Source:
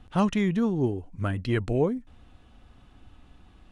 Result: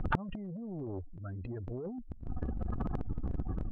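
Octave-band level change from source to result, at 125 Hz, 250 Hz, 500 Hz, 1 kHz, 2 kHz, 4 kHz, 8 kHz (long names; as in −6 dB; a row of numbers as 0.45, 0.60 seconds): −7.5 dB, −12.5 dB, −14.0 dB, −7.0 dB, −7.0 dB, below −15 dB, can't be measured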